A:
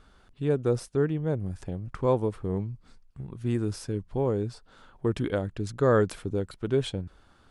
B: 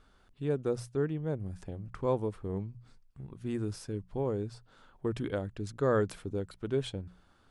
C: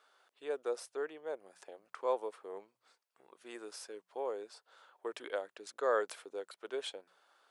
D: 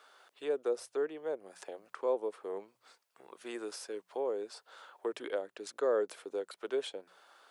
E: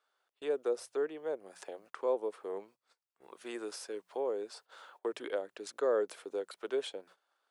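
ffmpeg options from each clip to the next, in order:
-af "bandreject=f=60:t=h:w=6,bandreject=f=120:t=h:w=6,bandreject=f=180:t=h:w=6,volume=-5.5dB"
-af "highpass=f=490:w=0.5412,highpass=f=490:w=1.3066"
-filter_complex "[0:a]acrossover=split=460[a][b];[b]acompressor=threshold=-53dB:ratio=2.5[c];[a][c]amix=inputs=2:normalize=0,volume=8dB"
-af "agate=range=-19dB:threshold=-57dB:ratio=16:detection=peak"

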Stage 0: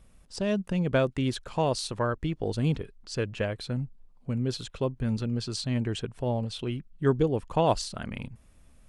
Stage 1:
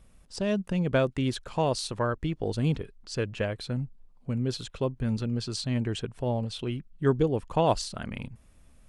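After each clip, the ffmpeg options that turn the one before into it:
-af anull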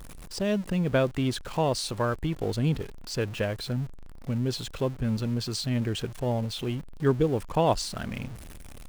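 -af "aeval=exprs='val(0)+0.5*0.0119*sgn(val(0))':c=same"

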